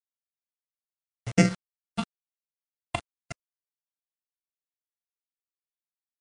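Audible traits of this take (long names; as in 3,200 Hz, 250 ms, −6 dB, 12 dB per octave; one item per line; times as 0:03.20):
a buzz of ramps at a fixed pitch in blocks of 64 samples
phaser sweep stages 6, 0.95 Hz, lowest notch 400–1,100 Hz
a quantiser's noise floor 6 bits, dither none
MP3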